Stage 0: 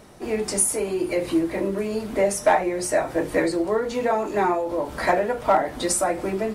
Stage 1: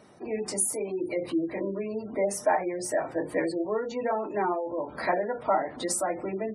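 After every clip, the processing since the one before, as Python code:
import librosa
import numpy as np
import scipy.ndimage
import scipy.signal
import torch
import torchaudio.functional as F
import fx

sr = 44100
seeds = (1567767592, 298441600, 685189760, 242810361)

y = fx.spec_gate(x, sr, threshold_db=-25, keep='strong')
y = scipy.signal.sosfilt(scipy.signal.butter(2, 120.0, 'highpass', fs=sr, output='sos'), y)
y = y * 10.0 ** (-6.0 / 20.0)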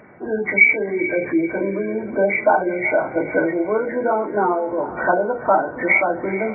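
y = fx.freq_compress(x, sr, knee_hz=1400.0, ratio=4.0)
y = fx.echo_diffused(y, sr, ms=456, feedback_pct=41, wet_db=-13.5)
y = y * 10.0 ** (8.5 / 20.0)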